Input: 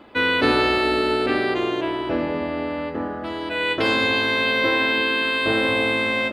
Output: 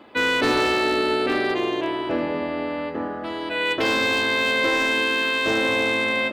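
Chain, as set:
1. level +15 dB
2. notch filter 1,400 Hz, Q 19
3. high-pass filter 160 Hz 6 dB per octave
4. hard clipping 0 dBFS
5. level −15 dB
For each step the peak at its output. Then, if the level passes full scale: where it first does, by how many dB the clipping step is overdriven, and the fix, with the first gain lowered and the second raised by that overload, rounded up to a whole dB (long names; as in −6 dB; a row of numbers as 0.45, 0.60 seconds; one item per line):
+8.5, +9.0, +8.5, 0.0, −15.0 dBFS
step 1, 8.5 dB
step 1 +6 dB, step 5 −6 dB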